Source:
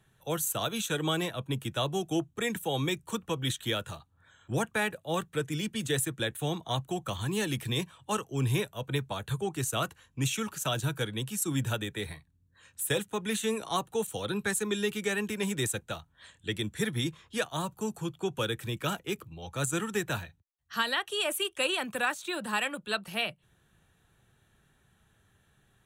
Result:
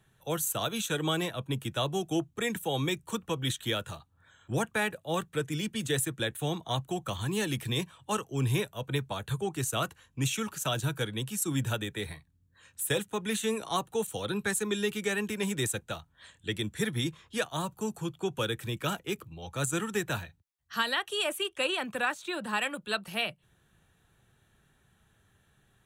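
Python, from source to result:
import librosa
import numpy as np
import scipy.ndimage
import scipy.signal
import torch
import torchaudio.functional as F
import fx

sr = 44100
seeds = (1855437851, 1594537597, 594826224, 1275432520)

y = fx.high_shelf(x, sr, hz=6600.0, db=-7.5, at=(21.29, 22.62))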